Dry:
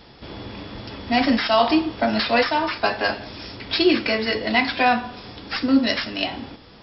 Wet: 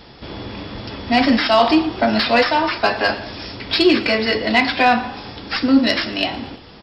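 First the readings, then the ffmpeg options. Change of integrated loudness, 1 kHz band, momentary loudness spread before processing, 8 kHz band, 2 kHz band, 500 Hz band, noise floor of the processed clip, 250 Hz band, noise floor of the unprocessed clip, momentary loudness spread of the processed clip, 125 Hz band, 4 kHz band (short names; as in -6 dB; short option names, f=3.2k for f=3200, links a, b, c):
+4.0 dB, +4.0 dB, 17 LU, n/a, +4.0 dB, +4.0 dB, -42 dBFS, +4.0 dB, -47 dBFS, 16 LU, +4.5 dB, +4.0 dB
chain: -filter_complex "[0:a]asoftclip=type=tanh:threshold=-7dB,asplit=2[a][b];[b]asplit=4[c][d][e][f];[c]adelay=115,afreqshift=31,volume=-19dB[g];[d]adelay=230,afreqshift=62,volume=-24.5dB[h];[e]adelay=345,afreqshift=93,volume=-30dB[i];[f]adelay=460,afreqshift=124,volume=-35.5dB[j];[g][h][i][j]amix=inputs=4:normalize=0[k];[a][k]amix=inputs=2:normalize=0,volume=4.5dB"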